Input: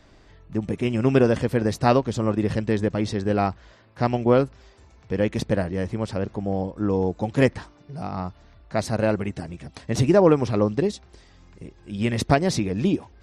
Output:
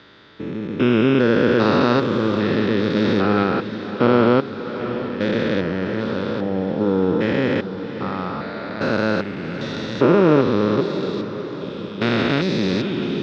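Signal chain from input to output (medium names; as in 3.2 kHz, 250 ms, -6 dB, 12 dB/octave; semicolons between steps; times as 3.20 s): spectrogram pixelated in time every 400 ms; 2.96–3.44 s: waveshaping leveller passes 1; cabinet simulation 190–4800 Hz, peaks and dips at 710 Hz -9 dB, 1.4 kHz +8 dB, 3.6 kHz +9 dB; echo that smears into a reverb 695 ms, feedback 52%, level -11 dB; trim +9 dB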